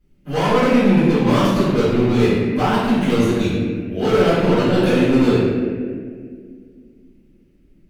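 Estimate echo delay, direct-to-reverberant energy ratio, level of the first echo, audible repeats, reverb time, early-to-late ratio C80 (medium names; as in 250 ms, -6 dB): no echo, -14.5 dB, no echo, no echo, 2.0 s, 0.5 dB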